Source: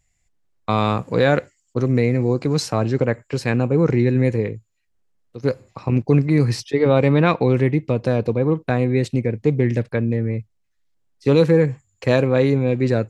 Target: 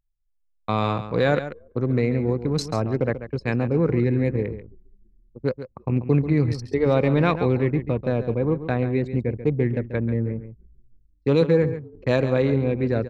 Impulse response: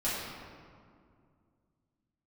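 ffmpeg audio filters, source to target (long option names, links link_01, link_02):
-filter_complex "[0:a]asplit=2[link_01][link_02];[link_02]asplit=4[link_03][link_04][link_05][link_06];[link_03]adelay=332,afreqshift=-54,volume=-20dB[link_07];[link_04]adelay=664,afreqshift=-108,volume=-25.7dB[link_08];[link_05]adelay=996,afreqshift=-162,volume=-31.4dB[link_09];[link_06]adelay=1328,afreqshift=-216,volume=-37dB[link_10];[link_07][link_08][link_09][link_10]amix=inputs=4:normalize=0[link_11];[link_01][link_11]amix=inputs=2:normalize=0,anlmdn=251,asplit=2[link_12][link_13];[link_13]aecho=0:1:138:0.266[link_14];[link_12][link_14]amix=inputs=2:normalize=0,volume=-4dB"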